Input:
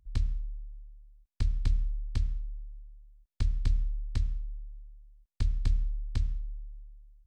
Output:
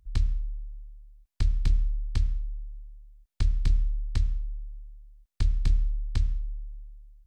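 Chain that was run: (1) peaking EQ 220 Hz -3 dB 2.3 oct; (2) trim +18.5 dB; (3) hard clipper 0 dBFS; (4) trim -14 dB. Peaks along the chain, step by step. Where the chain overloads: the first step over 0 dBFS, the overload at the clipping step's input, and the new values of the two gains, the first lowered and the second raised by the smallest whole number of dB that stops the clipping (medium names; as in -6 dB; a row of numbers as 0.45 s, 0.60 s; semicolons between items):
-15.5 dBFS, +3.0 dBFS, 0.0 dBFS, -14.0 dBFS; step 2, 3.0 dB; step 2 +15.5 dB, step 4 -11 dB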